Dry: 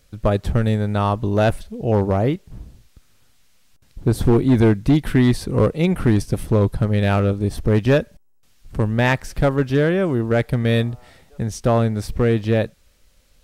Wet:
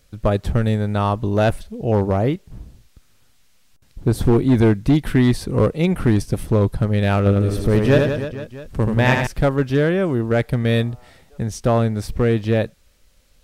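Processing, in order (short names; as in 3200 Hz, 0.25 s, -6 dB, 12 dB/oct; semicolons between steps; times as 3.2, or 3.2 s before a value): 7.18–9.27 reverse bouncing-ball echo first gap 80 ms, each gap 1.25×, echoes 5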